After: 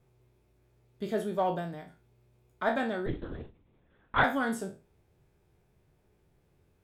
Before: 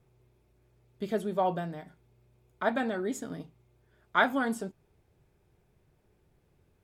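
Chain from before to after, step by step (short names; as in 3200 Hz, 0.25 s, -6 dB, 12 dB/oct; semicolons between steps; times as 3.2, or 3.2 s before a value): spectral trails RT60 0.32 s; in parallel at -9 dB: one-sided clip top -25.5 dBFS; 3.06–4.24 on the sum: LPC vocoder at 8 kHz whisper; gain -4 dB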